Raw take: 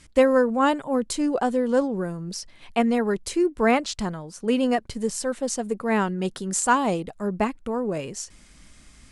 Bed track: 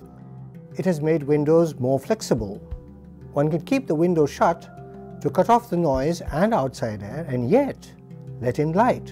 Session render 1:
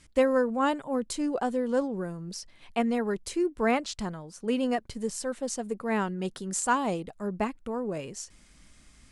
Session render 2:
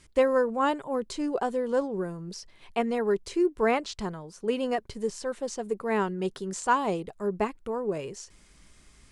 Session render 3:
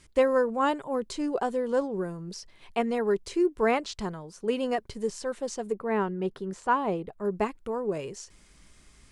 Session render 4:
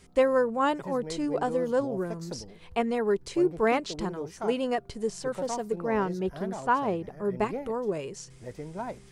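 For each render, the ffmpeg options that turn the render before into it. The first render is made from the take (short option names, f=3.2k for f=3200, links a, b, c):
-af "volume=-5.5dB"
-filter_complex "[0:a]acrossover=split=6800[a][b];[b]acompressor=threshold=-53dB:ratio=4:attack=1:release=60[c];[a][c]amix=inputs=2:normalize=0,equalizer=f=250:t=o:w=0.33:g=-5,equalizer=f=400:t=o:w=0.33:g=7,equalizer=f=1k:t=o:w=0.33:g=3"
-filter_complex "[0:a]asettb=1/sr,asplit=3[a][b][c];[a]atrim=end=5.724[d];[b]atrim=start=5.72:end=7.25,asetpts=PTS-STARTPTS,afade=t=in:d=0.004:c=qsin,afade=t=out:st=1.526:d=0.004:c=qsin,equalizer=f=7.4k:t=o:w=1.9:g=-14.5[e];[c]atrim=start=7.246[f];[d][e]acrossfade=d=0.004:c1=hsin:c2=qsin[g];[g][f]acrossfade=d=0.004:c1=qsin:c2=hsin"
-filter_complex "[1:a]volume=-17.5dB[a];[0:a][a]amix=inputs=2:normalize=0"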